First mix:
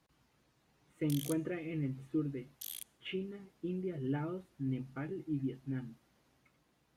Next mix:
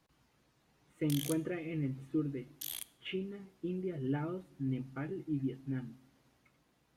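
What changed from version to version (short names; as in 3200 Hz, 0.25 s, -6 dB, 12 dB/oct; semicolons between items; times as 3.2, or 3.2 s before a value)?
background: remove passive tone stack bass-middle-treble 10-0-10; reverb: on, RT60 0.90 s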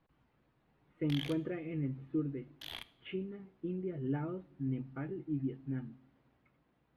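background +10.0 dB; master: add air absorption 380 m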